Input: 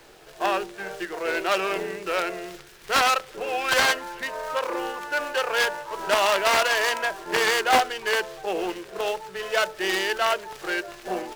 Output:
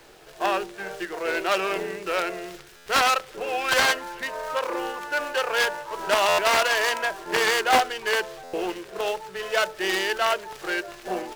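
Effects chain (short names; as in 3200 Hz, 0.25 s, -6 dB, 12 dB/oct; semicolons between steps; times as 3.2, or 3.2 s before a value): stuck buffer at 2.76/6.28/8.43, samples 512, times 8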